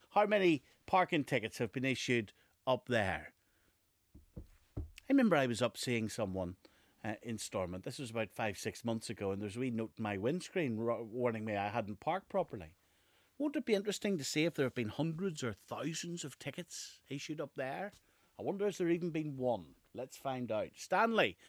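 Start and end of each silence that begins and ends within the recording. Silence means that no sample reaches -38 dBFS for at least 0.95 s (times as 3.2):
3.17–4.38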